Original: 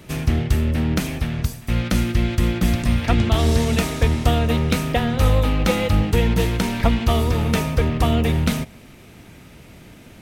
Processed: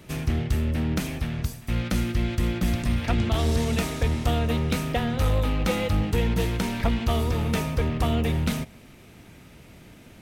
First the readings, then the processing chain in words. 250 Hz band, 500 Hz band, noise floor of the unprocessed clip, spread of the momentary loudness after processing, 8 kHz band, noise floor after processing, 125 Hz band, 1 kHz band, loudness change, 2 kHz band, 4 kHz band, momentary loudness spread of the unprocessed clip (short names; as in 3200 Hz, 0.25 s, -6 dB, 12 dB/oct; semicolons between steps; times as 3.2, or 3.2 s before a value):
-5.5 dB, -5.5 dB, -45 dBFS, 4 LU, -5.5 dB, -49 dBFS, -5.5 dB, -5.5 dB, -5.5 dB, -5.5 dB, -5.5 dB, 5 LU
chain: soft clip -9 dBFS, distortion -20 dB; gain -4.5 dB